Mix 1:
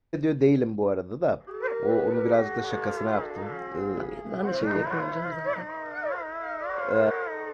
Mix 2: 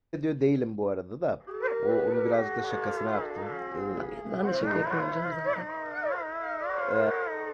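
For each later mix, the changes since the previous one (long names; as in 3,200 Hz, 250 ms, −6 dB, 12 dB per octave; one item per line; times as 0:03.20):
first voice −4.0 dB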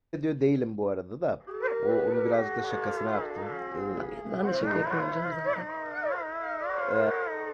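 nothing changed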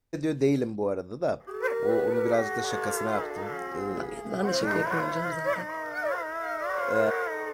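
master: remove high-frequency loss of the air 220 metres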